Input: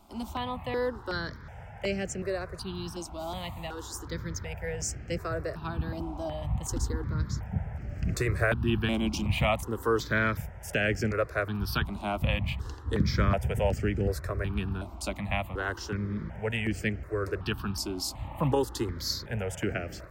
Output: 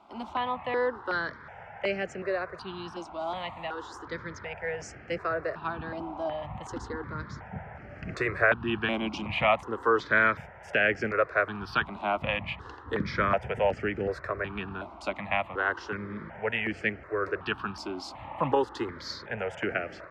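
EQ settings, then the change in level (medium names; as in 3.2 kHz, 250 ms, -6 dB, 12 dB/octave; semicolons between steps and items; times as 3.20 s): high-pass 860 Hz 6 dB/octave; low-pass 2.1 kHz 12 dB/octave; +8.0 dB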